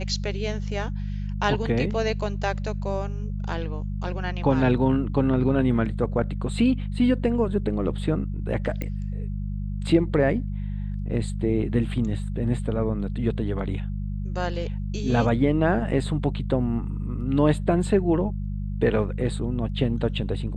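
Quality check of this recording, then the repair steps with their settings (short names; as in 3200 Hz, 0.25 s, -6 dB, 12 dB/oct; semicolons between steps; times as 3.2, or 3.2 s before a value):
hum 50 Hz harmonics 4 -29 dBFS
8.82 pop -16 dBFS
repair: de-click; de-hum 50 Hz, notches 4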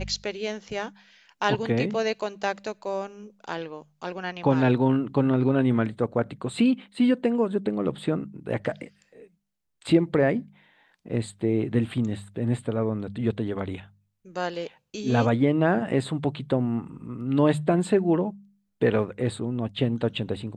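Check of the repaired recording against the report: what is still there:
none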